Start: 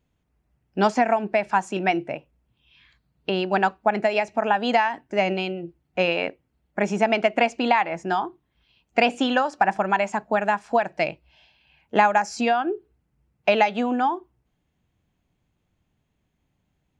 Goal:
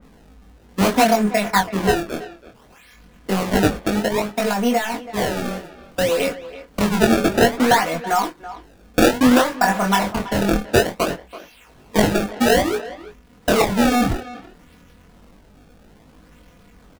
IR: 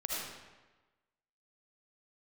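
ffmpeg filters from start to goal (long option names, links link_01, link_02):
-filter_complex "[0:a]aeval=exprs='val(0)+0.5*0.0531*sgn(val(0))':channel_layout=same,lowpass=3800,bandreject=frequency=136.6:width_type=h:width=4,bandreject=frequency=273.2:width_type=h:width=4,bandreject=frequency=409.8:width_type=h:width=4,agate=range=-20dB:threshold=-25dB:ratio=16:detection=peak,equalizer=frequency=820:width_type=o:width=0.22:gain=-8,aecho=1:1:4.1:0.65,asettb=1/sr,asplit=3[link_01][link_02][link_03];[link_01]atrim=end=3.684[link_04];[link_02]atrim=start=3.68:end=6.2,asetpts=PTS-STARTPTS,afade=type=in:duration=0.004:curve=qsin,afade=type=out:start_time=2.516:duration=0.004:curve=qsin,acrossover=split=500|1400[link_05][link_06][link_07];[link_05]acompressor=threshold=-23dB:ratio=4[link_08];[link_06]acompressor=threshold=-25dB:ratio=4[link_09];[link_07]acompressor=threshold=-31dB:ratio=4[link_10];[link_08][link_09][link_10]amix=inputs=3:normalize=0[link_11];[link_03]atrim=start=6.196[link_12];[link_04][link_11]acrossfade=duration=0.004:curve1=hsin:curve2=qsin[link_13];[link_13][link_12]acrossfade=duration=0.004:curve1=qsin:curve2=hsin,acrusher=samples=25:mix=1:aa=0.000001:lfo=1:lforange=40:lforate=0.59,flanger=delay=19:depth=6.9:speed=0.25,asplit=2[link_14][link_15];[link_15]adelay=330,highpass=300,lowpass=3400,asoftclip=type=hard:threshold=-15.5dB,volume=-15dB[link_16];[link_14][link_16]amix=inputs=2:normalize=0,adynamicequalizer=threshold=0.0141:dfrequency=2800:dqfactor=0.7:tfrequency=2800:tqfactor=0.7:attack=5:release=100:ratio=0.375:range=2:mode=cutabove:tftype=highshelf,volume=5.5dB"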